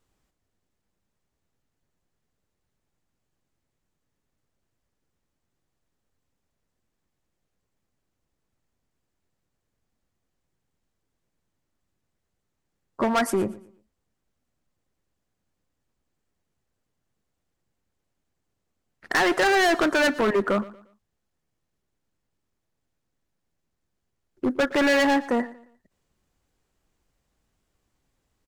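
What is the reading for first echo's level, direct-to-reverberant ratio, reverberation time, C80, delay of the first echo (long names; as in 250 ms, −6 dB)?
−19.0 dB, no reverb audible, no reverb audible, no reverb audible, 117 ms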